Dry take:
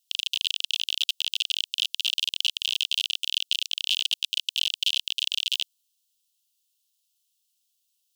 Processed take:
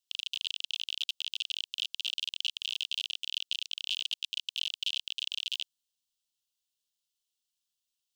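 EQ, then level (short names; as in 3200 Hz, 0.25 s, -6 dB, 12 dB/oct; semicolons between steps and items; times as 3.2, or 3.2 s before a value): tilt -2 dB/oct; bell 12000 Hz -6 dB 0.33 oct; -4.5 dB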